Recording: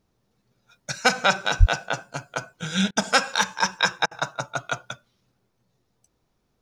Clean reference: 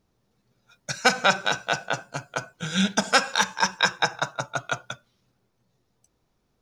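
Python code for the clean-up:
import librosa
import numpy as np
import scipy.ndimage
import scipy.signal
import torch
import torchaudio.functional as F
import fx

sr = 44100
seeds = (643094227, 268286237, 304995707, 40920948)

y = fx.highpass(x, sr, hz=140.0, slope=24, at=(1.59, 1.71), fade=0.02)
y = fx.fix_interpolate(y, sr, at_s=(2.91, 4.06), length_ms=51.0)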